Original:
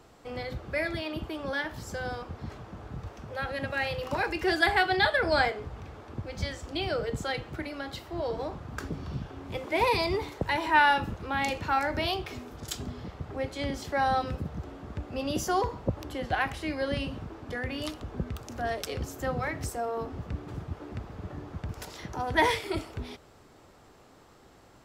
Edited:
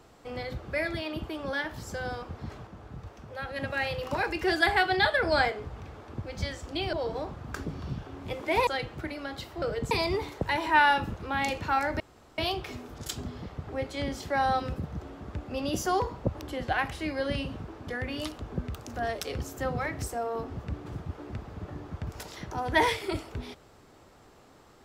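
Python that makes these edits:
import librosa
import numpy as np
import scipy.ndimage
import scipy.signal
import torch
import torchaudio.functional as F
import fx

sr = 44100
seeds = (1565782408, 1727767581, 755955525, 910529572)

y = fx.edit(x, sr, fx.clip_gain(start_s=2.67, length_s=0.89, db=-3.5),
    fx.swap(start_s=6.93, length_s=0.29, other_s=8.17, other_length_s=1.74),
    fx.insert_room_tone(at_s=12.0, length_s=0.38), tone=tone)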